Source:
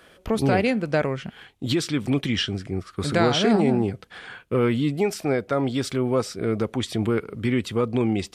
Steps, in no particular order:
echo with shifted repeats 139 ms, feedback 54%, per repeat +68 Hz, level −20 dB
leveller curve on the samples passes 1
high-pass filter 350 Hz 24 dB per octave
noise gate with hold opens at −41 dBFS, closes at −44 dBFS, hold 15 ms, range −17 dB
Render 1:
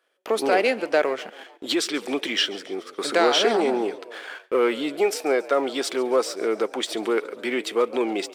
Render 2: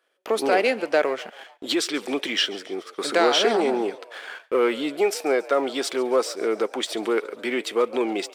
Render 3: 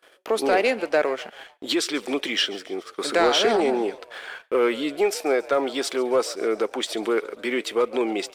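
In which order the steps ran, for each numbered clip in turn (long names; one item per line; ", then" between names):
leveller curve on the samples, then echo with shifted repeats, then high-pass filter, then noise gate with hold
leveller curve on the samples, then high-pass filter, then echo with shifted repeats, then noise gate with hold
high-pass filter, then echo with shifted repeats, then leveller curve on the samples, then noise gate with hold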